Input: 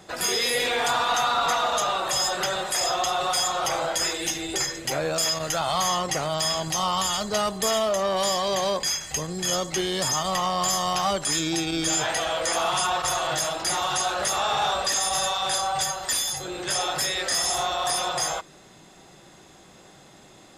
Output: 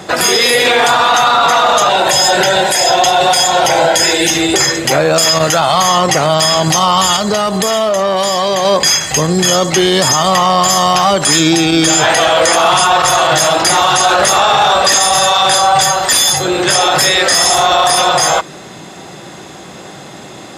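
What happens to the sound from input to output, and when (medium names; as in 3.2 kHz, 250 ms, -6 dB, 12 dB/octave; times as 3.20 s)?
1.89–4.30 s: Butterworth band-stop 1.2 kHz, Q 3.9
7.16–8.65 s: compression, threshold -29 dBFS
whole clip: high-pass 90 Hz 12 dB/octave; treble shelf 4.8 kHz -4.5 dB; loudness maximiser +20.5 dB; trim -1 dB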